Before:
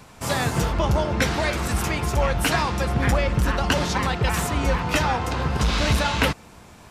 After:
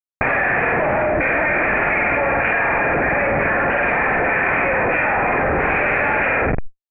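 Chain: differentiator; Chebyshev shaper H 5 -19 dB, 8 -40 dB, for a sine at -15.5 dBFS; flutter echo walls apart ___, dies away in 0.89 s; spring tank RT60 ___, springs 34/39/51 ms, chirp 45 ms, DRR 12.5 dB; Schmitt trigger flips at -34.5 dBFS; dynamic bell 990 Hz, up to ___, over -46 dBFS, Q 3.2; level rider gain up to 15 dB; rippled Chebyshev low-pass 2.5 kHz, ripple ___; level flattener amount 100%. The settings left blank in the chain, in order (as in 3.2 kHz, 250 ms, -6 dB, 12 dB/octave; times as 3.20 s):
8.4 m, 1.3 s, -4 dB, 6 dB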